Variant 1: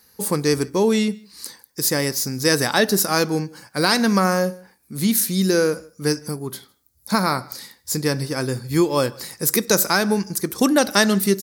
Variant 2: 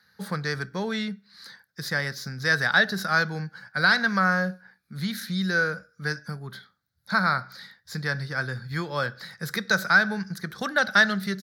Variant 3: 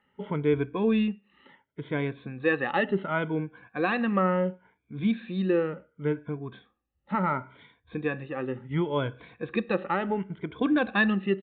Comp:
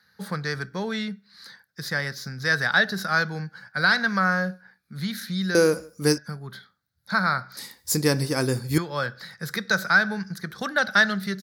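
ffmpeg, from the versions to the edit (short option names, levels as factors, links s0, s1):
-filter_complex "[0:a]asplit=2[s0][s1];[1:a]asplit=3[s2][s3][s4];[s2]atrim=end=5.552[s5];[s0]atrim=start=5.548:end=6.182[s6];[s3]atrim=start=6.178:end=7.572[s7];[s1]atrim=start=7.568:end=8.782[s8];[s4]atrim=start=8.778[s9];[s5][s6]acrossfade=d=0.004:c1=hsin:c2=hsin[s10];[s10][s7]acrossfade=d=0.004:c1=hsin:c2=hsin[s11];[s11][s8]acrossfade=d=0.004:c1=hsin:c2=hsin[s12];[s12][s9]acrossfade=d=0.004:c1=hsin:c2=hsin"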